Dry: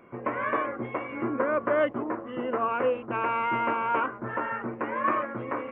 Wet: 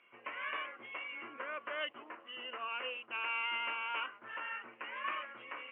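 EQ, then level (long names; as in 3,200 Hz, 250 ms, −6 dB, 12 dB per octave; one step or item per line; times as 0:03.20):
resonant band-pass 2,900 Hz, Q 6.6
high-frequency loss of the air 130 metres
+10.5 dB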